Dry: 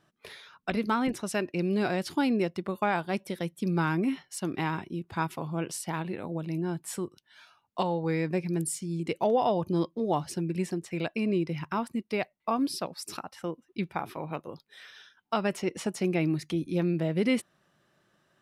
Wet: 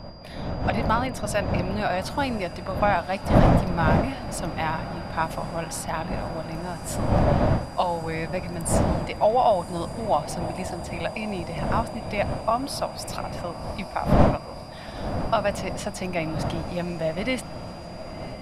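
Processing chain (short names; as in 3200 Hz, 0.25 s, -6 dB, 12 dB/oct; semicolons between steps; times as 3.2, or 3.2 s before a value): wind noise 240 Hz -25 dBFS; resonant low shelf 500 Hz -6 dB, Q 3; on a send: diffused feedback echo 1.089 s, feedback 75%, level -15 dB; on the sum: AGC gain up to 3.5 dB; whine 4800 Hz -50 dBFS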